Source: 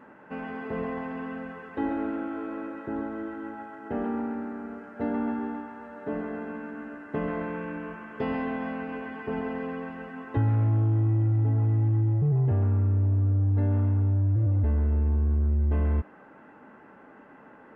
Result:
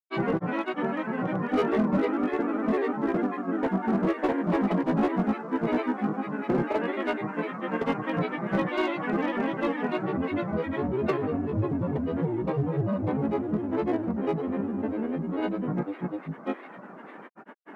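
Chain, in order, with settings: steep high-pass 170 Hz 36 dB/octave; overload inside the chain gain 26 dB; granulator, spray 781 ms, pitch spread up and down by 7 st; trim +8 dB

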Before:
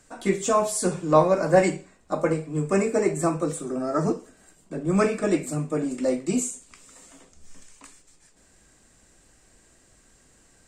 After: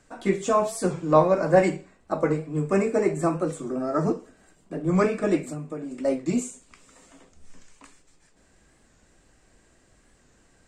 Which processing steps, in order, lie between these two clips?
treble shelf 6 kHz -11.5 dB; 5.40–6.05 s: compression 6:1, threshold -31 dBFS, peak gain reduction 9.5 dB; warped record 45 rpm, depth 100 cents

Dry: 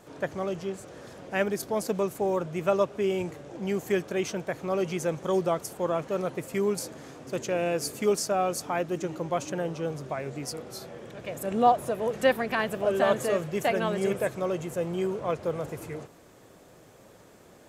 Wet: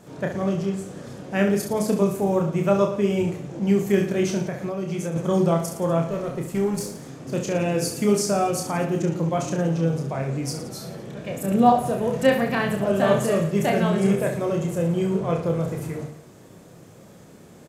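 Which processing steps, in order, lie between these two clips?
peaking EQ 7.6 kHz +3 dB 1.5 oct; 6.04–7.20 s: valve stage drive 21 dB, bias 0.5; reverse bouncing-ball echo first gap 30 ms, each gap 1.25×, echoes 5; 4.46–5.16 s: compression 10:1, threshold -29 dBFS, peak gain reduction 9 dB; peaking EQ 160 Hz +10.5 dB 1.7 oct

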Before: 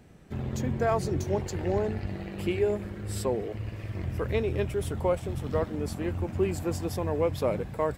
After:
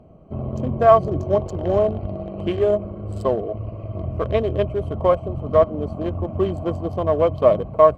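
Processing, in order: local Wiener filter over 25 samples; treble shelf 7.6 kHz -8.5 dB; small resonant body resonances 640/1100/3100 Hz, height 15 dB, ringing for 40 ms; trim +5 dB

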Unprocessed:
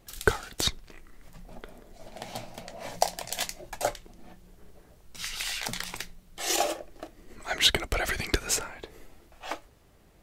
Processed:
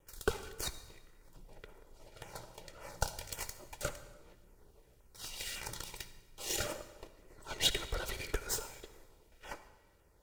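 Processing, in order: comb filter that takes the minimum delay 2.1 ms; LFO notch saw down 1.8 Hz 810–4600 Hz; on a send: reverberation RT60 1.2 s, pre-delay 53 ms, DRR 12 dB; on the sum: trim -7 dB

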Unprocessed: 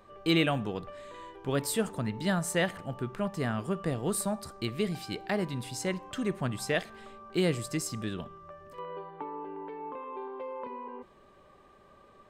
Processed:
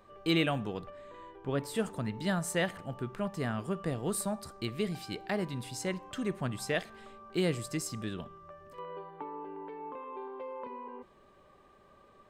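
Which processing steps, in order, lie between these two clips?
0.89–1.74 s: treble shelf 2.7 kHz -> 4.2 kHz -11.5 dB; trim -2.5 dB

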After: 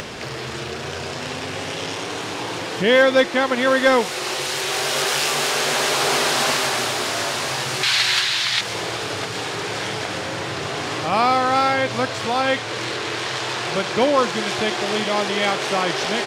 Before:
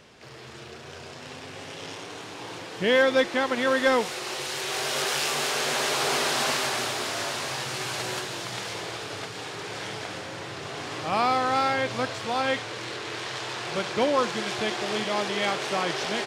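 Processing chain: 7.83–8.61 s: ten-band graphic EQ 125 Hz -4 dB, 250 Hz -9 dB, 500 Hz -9 dB, 2 kHz +8 dB, 4 kHz +11 dB; upward compressor, threshold -26 dBFS; trim +6 dB

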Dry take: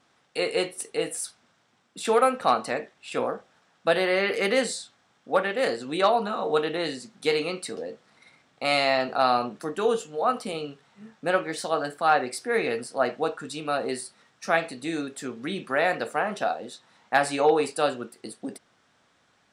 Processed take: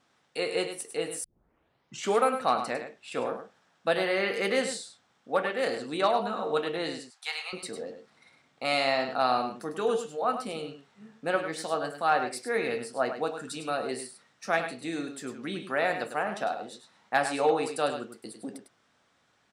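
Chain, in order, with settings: 7.00–7.53 s: Chebyshev high-pass 770 Hz, order 4; 13.27–13.70 s: treble shelf 8.8 kHz +9 dB; delay 102 ms -9 dB; 1.24 s: tape start 0.96 s; trim -4 dB

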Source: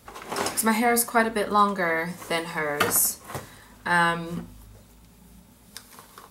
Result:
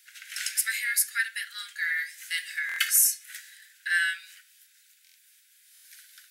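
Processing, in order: steep high-pass 1.5 kHz 96 dB/octave; 2.63–3.24 s: comb 2.4 ms, depth 69%; buffer glitch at 2.67/5.04/5.73 s, samples 1024, times 4

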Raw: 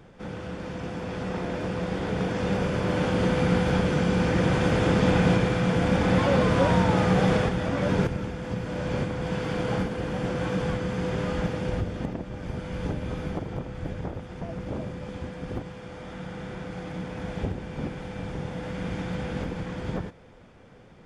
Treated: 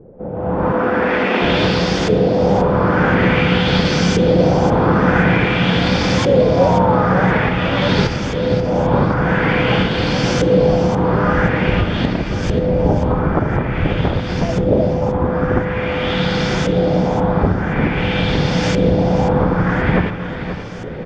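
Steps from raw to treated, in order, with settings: in parallel at +1 dB: compression, threshold -34 dBFS, peak gain reduction 16.5 dB; on the sum: LFO low-pass saw up 0.48 Hz 440–6800 Hz; on a send at -14 dB: reverberation RT60 1.8 s, pre-delay 3 ms; on the sum: dynamic bell 4.8 kHz, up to +7 dB, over -47 dBFS, Q 0.85; 0.72–1.42 s: elliptic high-pass 210 Hz; feedback delay 533 ms, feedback 31%, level -11 dB; level rider gain up to 15 dB; trim -1 dB

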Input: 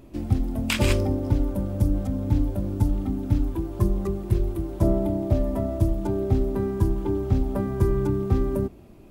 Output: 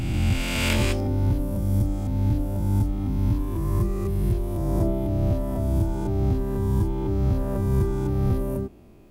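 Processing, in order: reverse spectral sustain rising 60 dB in 2.12 s; trim -5 dB

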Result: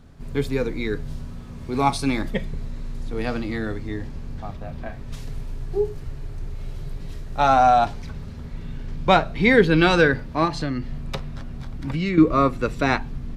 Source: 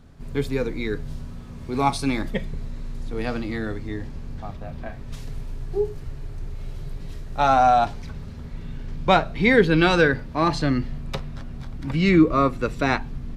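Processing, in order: 10.45–12.18 s: compression 5:1, threshold -23 dBFS, peak gain reduction 9.5 dB; trim +1 dB

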